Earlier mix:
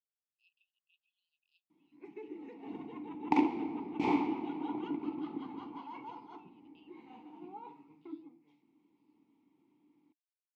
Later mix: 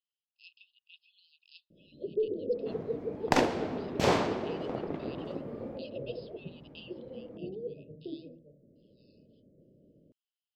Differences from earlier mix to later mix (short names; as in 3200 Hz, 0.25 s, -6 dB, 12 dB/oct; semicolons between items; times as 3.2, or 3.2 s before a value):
first sound: add steep low-pass 620 Hz 96 dB/oct; second sound -7.5 dB; master: remove vowel filter u